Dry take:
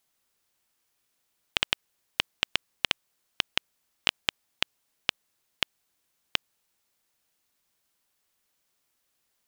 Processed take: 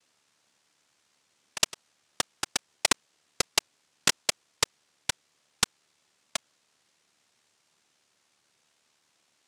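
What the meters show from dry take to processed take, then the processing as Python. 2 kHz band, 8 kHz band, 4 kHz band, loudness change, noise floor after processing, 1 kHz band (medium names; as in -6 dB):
-1.5 dB, +15.0 dB, -1.5 dB, +1.5 dB, -72 dBFS, +4.0 dB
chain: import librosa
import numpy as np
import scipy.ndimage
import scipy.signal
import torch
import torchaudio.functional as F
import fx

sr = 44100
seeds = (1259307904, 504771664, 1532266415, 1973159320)

y = x * np.sin(2.0 * np.pi * 37.0 * np.arange(len(x)) / sr)
y = fx.noise_vocoder(y, sr, seeds[0], bands=1)
y = y * librosa.db_to_amplitude(4.0)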